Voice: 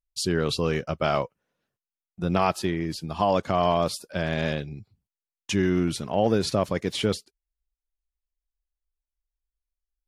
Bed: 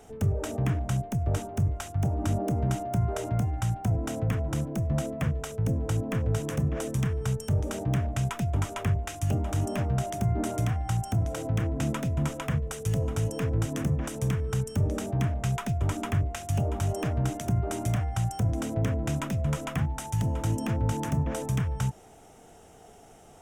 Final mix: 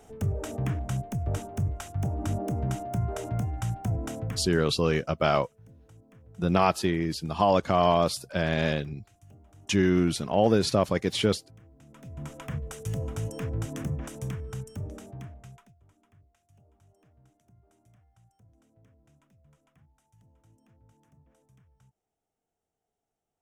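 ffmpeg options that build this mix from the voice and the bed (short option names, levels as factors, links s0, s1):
-filter_complex "[0:a]adelay=4200,volume=1.06[s0];[1:a]volume=9.44,afade=t=out:st=4.07:d=0.62:silence=0.0630957,afade=t=in:st=11.89:d=0.79:silence=0.0794328,afade=t=out:st=13.87:d=1.88:silence=0.0316228[s1];[s0][s1]amix=inputs=2:normalize=0"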